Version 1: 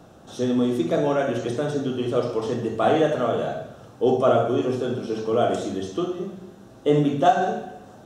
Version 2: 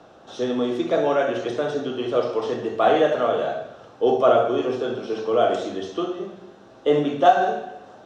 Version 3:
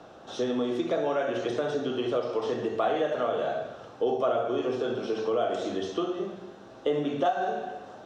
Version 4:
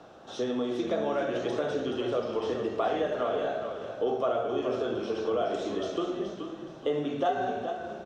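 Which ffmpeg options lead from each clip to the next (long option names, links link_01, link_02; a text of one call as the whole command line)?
ffmpeg -i in.wav -filter_complex "[0:a]acrossover=split=330 5800:gain=0.251 1 0.0794[link_01][link_02][link_03];[link_01][link_02][link_03]amix=inputs=3:normalize=0,volume=3dB" out.wav
ffmpeg -i in.wav -af "acompressor=threshold=-26dB:ratio=3" out.wav
ffmpeg -i in.wav -filter_complex "[0:a]asplit=5[link_01][link_02][link_03][link_04][link_05];[link_02]adelay=425,afreqshift=-34,volume=-8dB[link_06];[link_03]adelay=850,afreqshift=-68,volume=-18.5dB[link_07];[link_04]adelay=1275,afreqshift=-102,volume=-28.9dB[link_08];[link_05]adelay=1700,afreqshift=-136,volume=-39.4dB[link_09];[link_01][link_06][link_07][link_08][link_09]amix=inputs=5:normalize=0,volume=-2dB" out.wav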